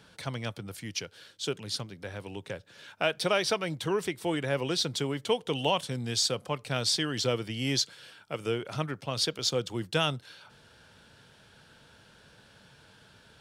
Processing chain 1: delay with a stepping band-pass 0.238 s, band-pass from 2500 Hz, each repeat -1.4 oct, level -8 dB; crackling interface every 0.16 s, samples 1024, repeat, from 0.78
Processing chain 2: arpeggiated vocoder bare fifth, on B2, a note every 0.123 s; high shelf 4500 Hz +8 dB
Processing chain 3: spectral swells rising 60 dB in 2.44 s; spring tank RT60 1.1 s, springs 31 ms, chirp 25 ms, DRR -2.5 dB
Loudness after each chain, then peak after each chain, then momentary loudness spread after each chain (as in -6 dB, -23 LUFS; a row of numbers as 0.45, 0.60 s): -30.5, -33.0, -21.5 LUFS; -13.0, -15.5, -4.0 dBFS; 13, 10, 9 LU